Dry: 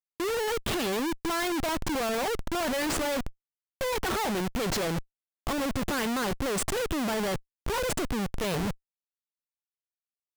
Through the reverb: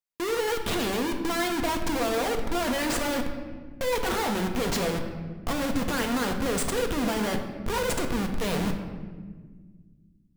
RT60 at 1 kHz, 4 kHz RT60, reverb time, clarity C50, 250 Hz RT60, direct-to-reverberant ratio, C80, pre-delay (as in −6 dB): 1.3 s, 0.95 s, 1.6 s, 7.0 dB, 2.7 s, 3.5 dB, 8.5 dB, 4 ms